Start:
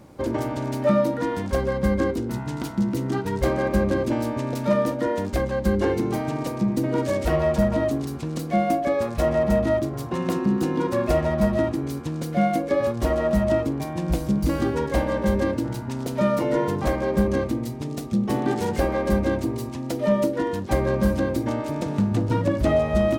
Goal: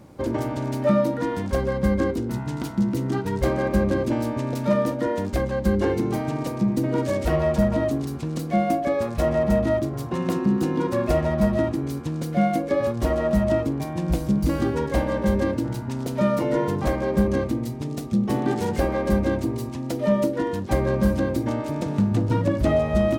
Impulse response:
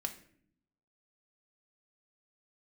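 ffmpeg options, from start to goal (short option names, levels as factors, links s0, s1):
-af "equalizer=f=130:w=0.56:g=2.5,volume=0.891"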